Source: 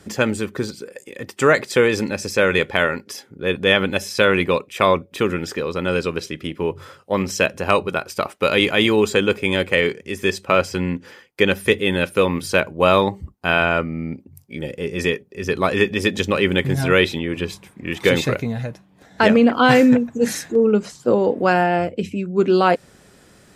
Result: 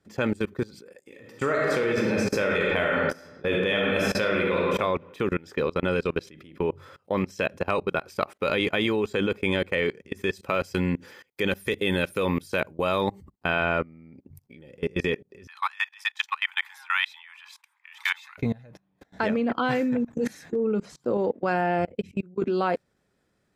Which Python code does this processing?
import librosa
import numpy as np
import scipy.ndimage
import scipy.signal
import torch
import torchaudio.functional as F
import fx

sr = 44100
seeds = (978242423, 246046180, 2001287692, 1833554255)

y = fx.reverb_throw(x, sr, start_s=1.03, length_s=3.71, rt60_s=1.3, drr_db=-1.5)
y = fx.high_shelf(y, sr, hz=5400.0, db=11.0, at=(10.33, 13.32))
y = fx.steep_highpass(y, sr, hz=840.0, slope=96, at=(15.47, 18.38))
y = fx.level_steps(y, sr, step_db=23, at=(21.17, 22.42))
y = fx.peak_eq(y, sr, hz=9000.0, db=-7.0, octaves=1.7)
y = fx.level_steps(y, sr, step_db=24)
y = fx.notch(y, sr, hz=2900.0, q=19.0)